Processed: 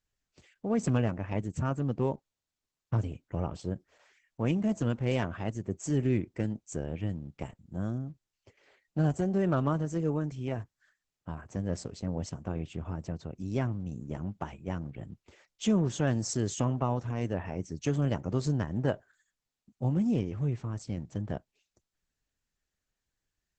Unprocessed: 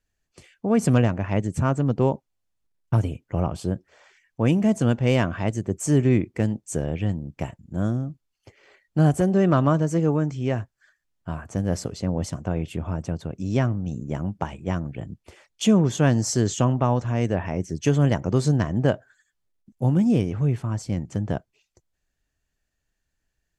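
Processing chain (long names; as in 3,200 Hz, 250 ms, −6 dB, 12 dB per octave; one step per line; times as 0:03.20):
level −8 dB
Opus 10 kbit/s 48,000 Hz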